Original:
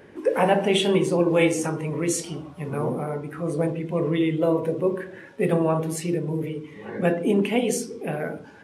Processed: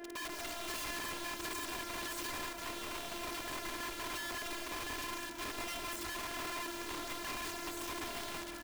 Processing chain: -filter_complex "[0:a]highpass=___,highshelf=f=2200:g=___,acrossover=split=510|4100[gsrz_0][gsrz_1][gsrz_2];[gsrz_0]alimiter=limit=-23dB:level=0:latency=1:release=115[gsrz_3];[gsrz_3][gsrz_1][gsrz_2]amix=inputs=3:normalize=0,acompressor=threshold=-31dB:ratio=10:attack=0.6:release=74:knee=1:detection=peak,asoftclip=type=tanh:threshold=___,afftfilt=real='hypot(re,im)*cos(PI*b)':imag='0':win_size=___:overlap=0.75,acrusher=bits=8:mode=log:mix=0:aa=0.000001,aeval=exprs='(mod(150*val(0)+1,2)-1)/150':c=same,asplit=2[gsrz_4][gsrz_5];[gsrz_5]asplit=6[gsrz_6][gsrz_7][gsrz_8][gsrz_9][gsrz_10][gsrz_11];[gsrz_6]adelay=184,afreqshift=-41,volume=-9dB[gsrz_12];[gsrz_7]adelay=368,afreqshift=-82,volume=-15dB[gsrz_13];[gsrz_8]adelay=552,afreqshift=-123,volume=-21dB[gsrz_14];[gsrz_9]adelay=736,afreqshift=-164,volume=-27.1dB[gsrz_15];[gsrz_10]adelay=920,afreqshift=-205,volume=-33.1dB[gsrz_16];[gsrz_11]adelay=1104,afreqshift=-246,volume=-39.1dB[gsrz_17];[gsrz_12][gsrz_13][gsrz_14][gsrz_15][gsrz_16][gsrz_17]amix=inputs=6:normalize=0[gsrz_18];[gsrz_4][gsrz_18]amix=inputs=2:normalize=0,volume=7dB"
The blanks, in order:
200, -7.5, -38dB, 512